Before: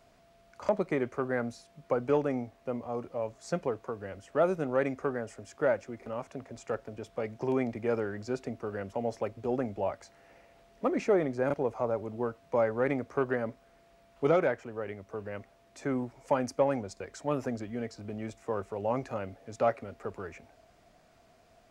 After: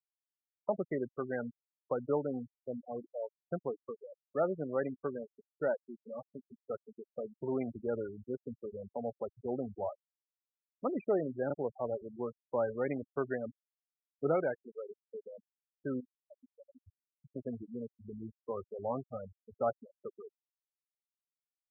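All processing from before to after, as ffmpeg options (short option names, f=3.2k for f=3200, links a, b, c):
-filter_complex "[0:a]asettb=1/sr,asplit=3[a][b][c];[a]atrim=end=16.004[d];[b]atrim=start=16:end=17.36,asetpts=PTS-STARTPTS,afade=t=in:d=0.004:c=qsin,afade=t=out:st=1.356:d=0.004:c=qsin,highpass=52,asubboost=boost=5.5:cutoff=240,acompressor=threshold=-40dB:ratio=20:attack=3.2:release=140:knee=1:detection=peak[e];[c]atrim=start=17.356[f];[d][e]acrossfade=d=0.004:c1=hsin:c2=qsin[g];[g][f]acrossfade=d=0.004:c1=qsin:c2=hsin,anlmdn=0.0251,afftfilt=real='re*gte(hypot(re,im),0.0562)':imag='im*gte(hypot(re,im),0.0562)':win_size=1024:overlap=0.75,volume=-5dB"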